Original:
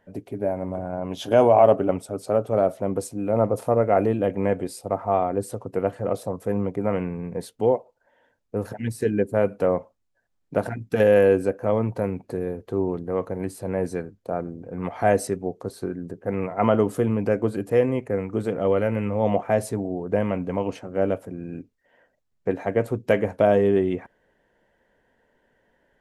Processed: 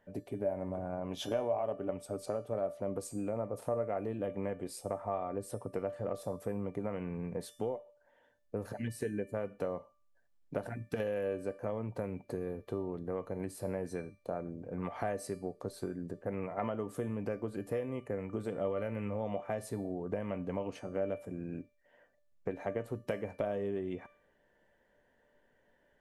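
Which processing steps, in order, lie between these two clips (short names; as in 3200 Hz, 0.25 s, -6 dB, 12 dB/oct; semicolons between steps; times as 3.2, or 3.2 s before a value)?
compressor 6:1, threshold -27 dBFS, peak gain reduction 15.5 dB; resonator 590 Hz, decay 0.5 s, mix 80%; gain +7.5 dB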